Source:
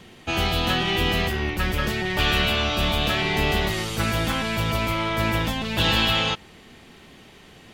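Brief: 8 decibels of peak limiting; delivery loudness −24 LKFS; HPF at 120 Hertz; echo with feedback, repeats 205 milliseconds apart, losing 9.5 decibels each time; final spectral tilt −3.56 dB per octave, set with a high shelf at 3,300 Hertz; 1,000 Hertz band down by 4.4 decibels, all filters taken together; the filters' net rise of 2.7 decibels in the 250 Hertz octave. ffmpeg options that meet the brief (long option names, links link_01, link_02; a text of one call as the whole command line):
ffmpeg -i in.wav -af "highpass=120,equalizer=frequency=250:width_type=o:gain=4.5,equalizer=frequency=1000:width_type=o:gain=-5.5,highshelf=frequency=3300:gain=-6.5,alimiter=limit=-19dB:level=0:latency=1,aecho=1:1:205|410|615|820:0.335|0.111|0.0365|0.012,volume=3dB" out.wav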